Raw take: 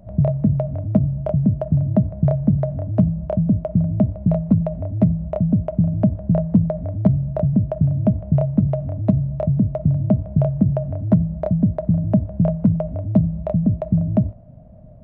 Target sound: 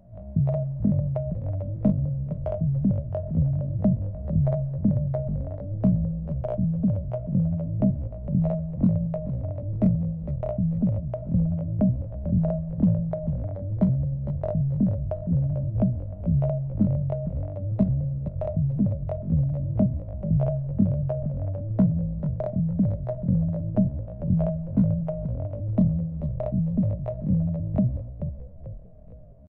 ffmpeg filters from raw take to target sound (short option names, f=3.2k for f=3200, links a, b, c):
-filter_complex "[0:a]asplit=6[a][b][c][d][e][f];[b]adelay=227,afreqshift=-43,volume=-9dB[g];[c]adelay=454,afreqshift=-86,volume=-15.9dB[h];[d]adelay=681,afreqshift=-129,volume=-22.9dB[i];[e]adelay=908,afreqshift=-172,volume=-29.8dB[j];[f]adelay=1135,afreqshift=-215,volume=-36.7dB[k];[a][g][h][i][j][k]amix=inputs=6:normalize=0,atempo=0.51,volume=-6.5dB"